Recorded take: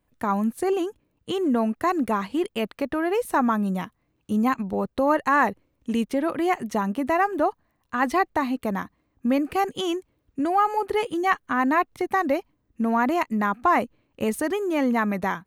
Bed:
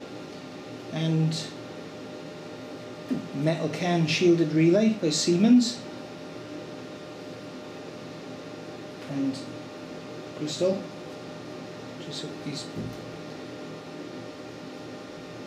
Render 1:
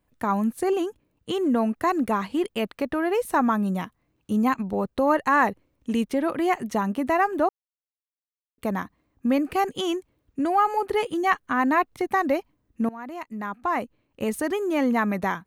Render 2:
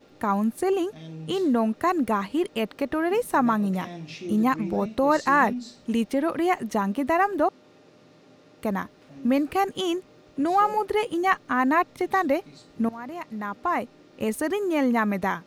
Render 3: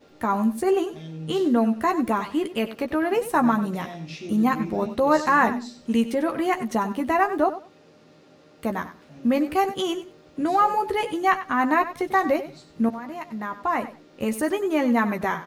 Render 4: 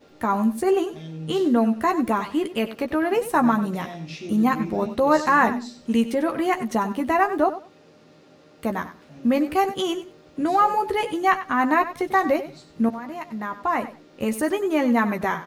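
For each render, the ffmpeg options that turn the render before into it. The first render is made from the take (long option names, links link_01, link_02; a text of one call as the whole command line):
ffmpeg -i in.wav -filter_complex "[0:a]asplit=4[link_01][link_02][link_03][link_04];[link_01]atrim=end=7.49,asetpts=PTS-STARTPTS,afade=type=out:start_time=7.486:duration=0.004:curve=hsin[link_05];[link_02]atrim=start=7.49:end=8.58,asetpts=PTS-STARTPTS,volume=0[link_06];[link_03]atrim=start=8.58:end=12.89,asetpts=PTS-STARTPTS,afade=type=in:duration=0.004:curve=hsin,afade=type=out:start_time=4.306:duration=0.004:curve=hsin:silence=0.1[link_07];[link_04]atrim=start=12.89,asetpts=PTS-STARTPTS,afade=type=in:duration=1.74:silence=0.1[link_08];[link_05][link_06][link_07][link_08]concat=n=4:v=0:a=1" out.wav
ffmpeg -i in.wav -i bed.wav -filter_complex "[1:a]volume=-14.5dB[link_01];[0:a][link_01]amix=inputs=2:normalize=0" out.wav
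ffmpeg -i in.wav -filter_complex "[0:a]asplit=2[link_01][link_02];[link_02]adelay=13,volume=-6.5dB[link_03];[link_01][link_03]amix=inputs=2:normalize=0,aecho=1:1:95|190:0.211|0.0359" out.wav
ffmpeg -i in.wav -af "volume=1dB" out.wav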